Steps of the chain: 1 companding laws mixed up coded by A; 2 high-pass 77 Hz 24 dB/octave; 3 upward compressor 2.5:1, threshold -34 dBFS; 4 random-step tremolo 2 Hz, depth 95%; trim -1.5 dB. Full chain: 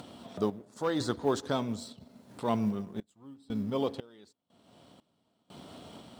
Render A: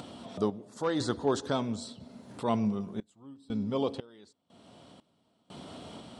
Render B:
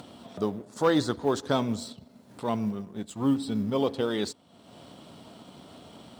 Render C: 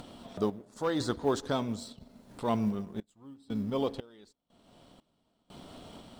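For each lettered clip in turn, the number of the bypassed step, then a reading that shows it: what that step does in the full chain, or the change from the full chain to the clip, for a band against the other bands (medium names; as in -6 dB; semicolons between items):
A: 1, distortion -24 dB; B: 4, loudness change +4.0 LU; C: 2, momentary loudness spread change -1 LU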